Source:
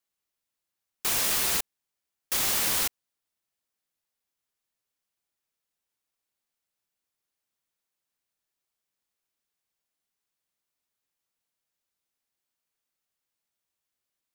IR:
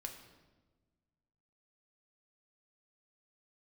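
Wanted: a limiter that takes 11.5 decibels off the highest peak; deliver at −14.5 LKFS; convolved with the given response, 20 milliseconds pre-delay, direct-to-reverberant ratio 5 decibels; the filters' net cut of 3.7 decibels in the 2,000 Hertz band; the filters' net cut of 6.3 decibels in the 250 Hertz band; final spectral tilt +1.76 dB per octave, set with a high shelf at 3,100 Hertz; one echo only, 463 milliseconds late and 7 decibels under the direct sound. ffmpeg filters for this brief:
-filter_complex "[0:a]equalizer=frequency=250:width_type=o:gain=-9,equalizer=frequency=2000:width_type=o:gain=-8,highshelf=frequency=3100:gain=8,alimiter=limit=-16.5dB:level=0:latency=1,aecho=1:1:463:0.447,asplit=2[link_01][link_02];[1:a]atrim=start_sample=2205,adelay=20[link_03];[link_02][link_03]afir=irnorm=-1:irlink=0,volume=-2dB[link_04];[link_01][link_04]amix=inputs=2:normalize=0,volume=10.5dB"

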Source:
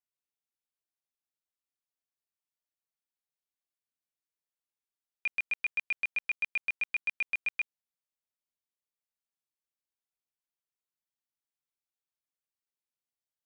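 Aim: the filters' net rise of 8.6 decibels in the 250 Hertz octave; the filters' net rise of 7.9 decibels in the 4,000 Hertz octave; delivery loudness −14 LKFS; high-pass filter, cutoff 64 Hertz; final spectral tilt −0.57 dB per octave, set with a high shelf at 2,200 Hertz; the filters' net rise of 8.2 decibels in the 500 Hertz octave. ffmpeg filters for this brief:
ffmpeg -i in.wav -af "highpass=64,equalizer=frequency=250:width_type=o:gain=8.5,equalizer=frequency=500:width_type=o:gain=7.5,highshelf=frequency=2200:gain=6,equalizer=frequency=4000:width_type=o:gain=5.5,volume=13dB" out.wav

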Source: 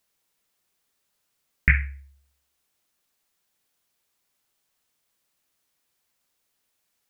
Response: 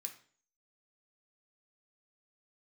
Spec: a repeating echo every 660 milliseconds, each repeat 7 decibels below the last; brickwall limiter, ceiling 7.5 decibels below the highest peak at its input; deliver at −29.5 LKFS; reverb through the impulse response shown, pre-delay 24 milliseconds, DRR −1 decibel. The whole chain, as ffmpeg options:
-filter_complex "[0:a]alimiter=limit=-9dB:level=0:latency=1,aecho=1:1:660|1320|1980|2640|3300:0.447|0.201|0.0905|0.0407|0.0183,asplit=2[link_01][link_02];[1:a]atrim=start_sample=2205,adelay=24[link_03];[link_02][link_03]afir=irnorm=-1:irlink=0,volume=5.5dB[link_04];[link_01][link_04]amix=inputs=2:normalize=0,volume=-1dB"

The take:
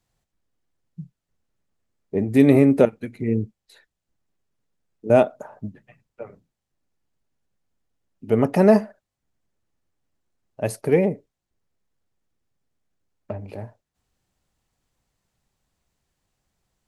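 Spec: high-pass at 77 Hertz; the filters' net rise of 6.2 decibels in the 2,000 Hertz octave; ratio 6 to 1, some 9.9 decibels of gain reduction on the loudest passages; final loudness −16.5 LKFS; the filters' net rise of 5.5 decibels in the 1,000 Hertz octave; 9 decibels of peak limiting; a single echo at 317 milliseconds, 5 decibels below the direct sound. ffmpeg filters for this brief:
ffmpeg -i in.wav -af "highpass=77,equalizer=frequency=1000:width_type=o:gain=7,equalizer=frequency=2000:width_type=o:gain=5.5,acompressor=threshold=-18dB:ratio=6,alimiter=limit=-16.5dB:level=0:latency=1,aecho=1:1:317:0.562,volume=13.5dB" out.wav

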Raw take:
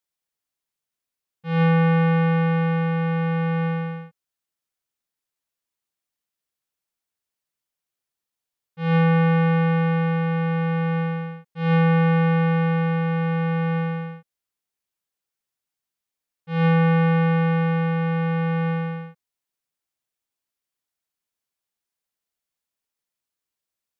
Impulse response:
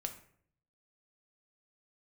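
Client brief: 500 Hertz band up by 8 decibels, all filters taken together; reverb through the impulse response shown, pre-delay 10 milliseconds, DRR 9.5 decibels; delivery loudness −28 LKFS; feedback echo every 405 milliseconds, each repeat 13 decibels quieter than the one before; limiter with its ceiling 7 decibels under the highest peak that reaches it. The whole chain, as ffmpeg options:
-filter_complex "[0:a]equalizer=frequency=500:width_type=o:gain=8,alimiter=limit=-16.5dB:level=0:latency=1,aecho=1:1:405|810|1215:0.224|0.0493|0.0108,asplit=2[link_01][link_02];[1:a]atrim=start_sample=2205,adelay=10[link_03];[link_02][link_03]afir=irnorm=-1:irlink=0,volume=-8.5dB[link_04];[link_01][link_04]amix=inputs=2:normalize=0,volume=-5.5dB"

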